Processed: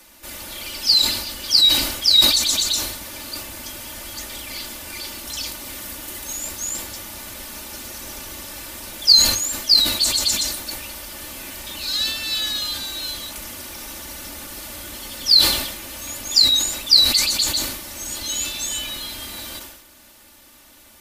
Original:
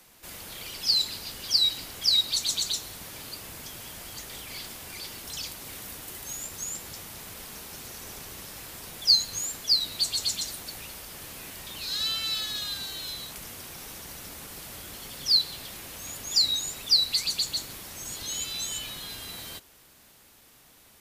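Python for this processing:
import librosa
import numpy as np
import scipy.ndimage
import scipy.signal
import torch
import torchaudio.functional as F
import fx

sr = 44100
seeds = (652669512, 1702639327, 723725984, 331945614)

y = x + 0.71 * np.pad(x, (int(3.4 * sr / 1000.0), 0))[:len(x)]
y = fx.sustainer(y, sr, db_per_s=60.0)
y = y * 10.0 ** (5.5 / 20.0)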